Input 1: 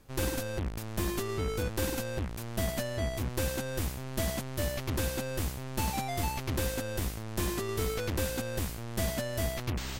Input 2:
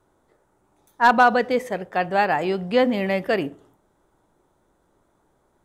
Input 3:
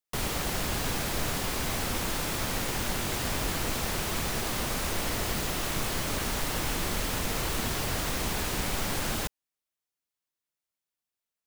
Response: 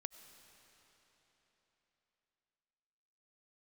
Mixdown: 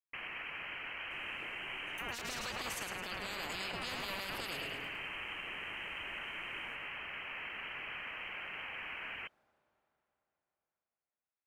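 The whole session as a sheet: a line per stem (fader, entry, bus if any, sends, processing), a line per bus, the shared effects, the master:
off
-2.0 dB, 1.00 s, bus A, no send, echo send -10 dB, spectral compressor 10:1
-6.0 dB, 0.00 s, bus A, send -17.5 dB, no echo send, HPF 54 Hz; three-band isolator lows -13 dB, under 410 Hz, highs -17 dB, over 2300 Hz
bus A: 0.0 dB, inverted band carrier 3100 Hz; compressor, threshold -38 dBFS, peak gain reduction 11.5 dB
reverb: on, RT60 4.0 s, pre-delay 55 ms
echo: feedback echo 0.107 s, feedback 47%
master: limiter -29.5 dBFS, peak gain reduction 10.5 dB

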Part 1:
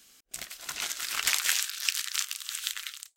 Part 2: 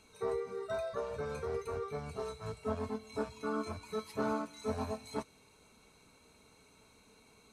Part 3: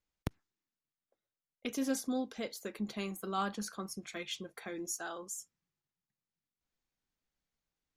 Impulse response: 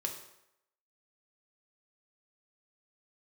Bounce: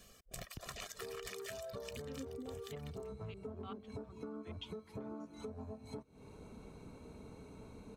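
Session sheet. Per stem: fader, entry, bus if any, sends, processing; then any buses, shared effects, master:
+1.5 dB, 0.00 s, bus A, no send, reverb removal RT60 0.71 s; comb 1.7 ms, depth 79%
-5.0 dB, 0.80 s, bus A, no send, AGC gain up to 10 dB
-13.5 dB, 0.30 s, no bus, no send, LFO low-pass square 5.1 Hz 370–2900 Hz; three-band expander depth 100%
bus A: 0.0 dB, tilt shelf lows +10 dB; compressor, threshold -36 dBFS, peak gain reduction 17 dB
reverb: off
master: compressor 4:1, threshold -44 dBFS, peak gain reduction 12.5 dB

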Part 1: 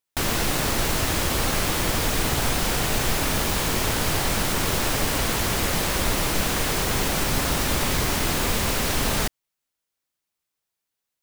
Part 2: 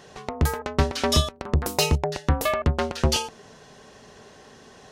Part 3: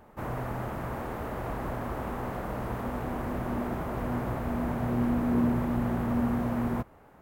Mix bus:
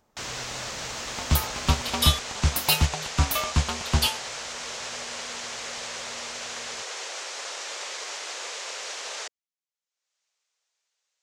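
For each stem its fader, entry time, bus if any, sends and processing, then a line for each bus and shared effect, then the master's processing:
-4.0 dB, 0.00 s, no send, elliptic band-pass 480–6900 Hz, stop band 50 dB; upward compressor, threshold -50 dBFS
+1.0 dB, 0.90 s, no send, high shelf 11000 Hz +6.5 dB; fixed phaser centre 1800 Hz, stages 6
1.84 s -1 dB -> 2.52 s -13.5 dB, 0.00 s, no send, compressor, threshold -30 dBFS, peak gain reduction 8.5 dB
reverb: off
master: high shelf 3000 Hz +8 dB; upward expander 1.5:1, over -41 dBFS

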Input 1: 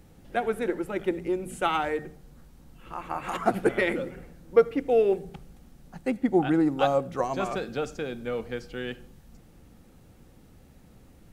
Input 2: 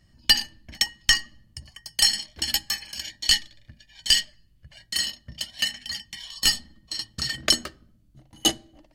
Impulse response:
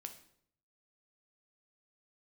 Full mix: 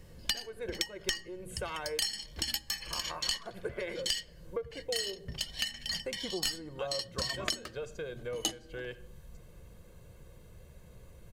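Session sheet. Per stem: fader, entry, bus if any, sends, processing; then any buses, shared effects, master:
-2.0 dB, 0.00 s, no send, notch 5300 Hz, Q 13; comb 1.9 ms, depth 77%; compressor 2:1, threshold -40 dBFS, peak gain reduction 17 dB
0.0 dB, 0.00 s, no send, dry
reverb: off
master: compressor 6:1, threshold -31 dBFS, peak gain reduction 17.5 dB

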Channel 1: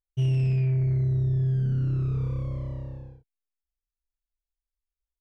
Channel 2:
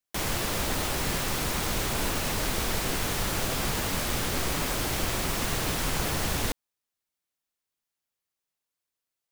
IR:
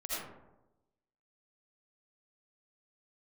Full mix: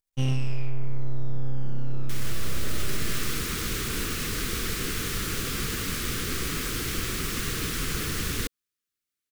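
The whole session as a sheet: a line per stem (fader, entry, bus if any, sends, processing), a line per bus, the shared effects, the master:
+1.5 dB, 0.00 s, send -6.5 dB, high shelf 2200 Hz +11 dB; half-wave rectifier
-0.5 dB, 1.95 s, no send, band shelf 740 Hz -15.5 dB 1 oct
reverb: on, RT60 1.0 s, pre-delay 40 ms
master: limiter -15.5 dBFS, peak gain reduction 8.5 dB

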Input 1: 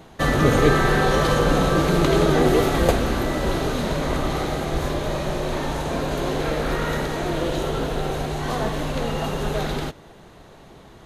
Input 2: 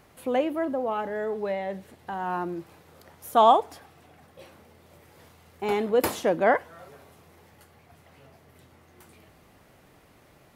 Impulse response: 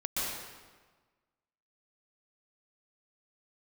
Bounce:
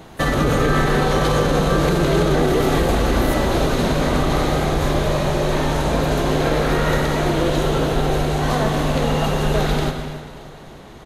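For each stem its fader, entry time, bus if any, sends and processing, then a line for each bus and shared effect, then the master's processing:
+3.0 dB, 0.00 s, send -11.5 dB, echo send -13.5 dB, limiter -14.5 dBFS, peak gain reduction 10 dB
-15.0 dB, 0.00 s, no send, no echo send, backwards sustainer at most 73 dB/s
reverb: on, RT60 1.4 s, pre-delay 0.115 s
echo: feedback echo 0.293 s, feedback 53%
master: dry

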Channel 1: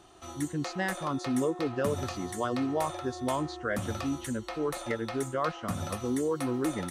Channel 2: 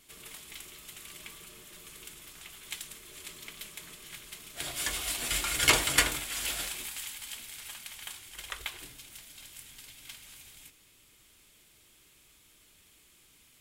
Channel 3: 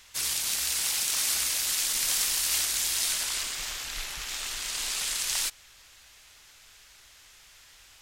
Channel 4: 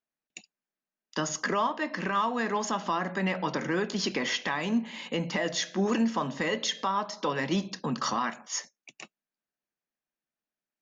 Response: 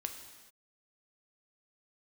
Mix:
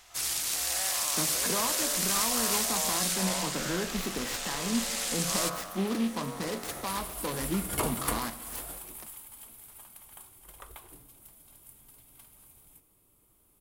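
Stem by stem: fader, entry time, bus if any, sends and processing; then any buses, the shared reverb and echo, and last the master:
-7.0 dB, 0.00 s, no send, spectral dilation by 0.24 s; ladder high-pass 520 Hz, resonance 30%
-2.5 dB, 2.10 s, send -12.5 dB, band shelf 3400 Hz -13.5 dB 2.6 oct
-3.5 dB, 0.00 s, send -8 dB, dry
-9.0 dB, 0.00 s, send -4.5 dB, tone controls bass +5 dB, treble -6 dB; noise-modulated delay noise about 2700 Hz, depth 0.1 ms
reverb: on, pre-delay 3 ms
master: bell 3300 Hz -3 dB 1.6 oct

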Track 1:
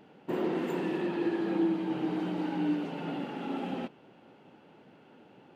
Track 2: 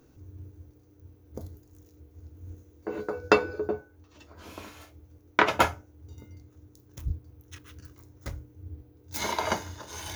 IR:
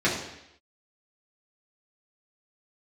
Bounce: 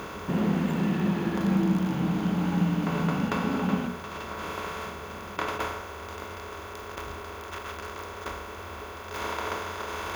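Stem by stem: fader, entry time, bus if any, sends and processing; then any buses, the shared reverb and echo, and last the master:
+2.5 dB, 0.00 s, no send, resonant low shelf 260 Hz +8 dB, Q 3
-15.5 dB, 0.00 s, no send, per-bin compression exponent 0.2; small resonant body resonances 1100/3400 Hz, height 11 dB, ringing for 45 ms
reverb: off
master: notches 60/120/180/240/300/360/420/480 Hz

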